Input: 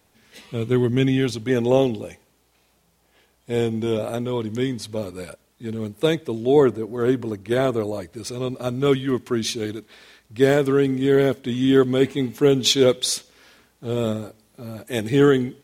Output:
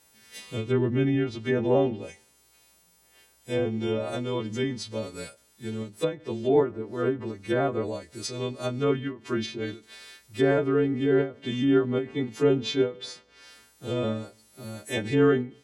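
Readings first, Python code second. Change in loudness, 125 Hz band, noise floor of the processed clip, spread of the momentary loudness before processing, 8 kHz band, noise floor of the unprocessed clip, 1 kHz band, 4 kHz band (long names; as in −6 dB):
−5.5 dB, −5.5 dB, −62 dBFS, 16 LU, −12.5 dB, −63 dBFS, −4.0 dB, −9.5 dB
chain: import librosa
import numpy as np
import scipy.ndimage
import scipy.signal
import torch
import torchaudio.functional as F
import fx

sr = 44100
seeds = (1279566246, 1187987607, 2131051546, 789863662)

y = fx.freq_snap(x, sr, grid_st=2)
y = fx.env_lowpass_down(y, sr, base_hz=1600.0, full_db=-17.0)
y = fx.end_taper(y, sr, db_per_s=180.0)
y = F.gain(torch.from_numpy(y), -4.0).numpy()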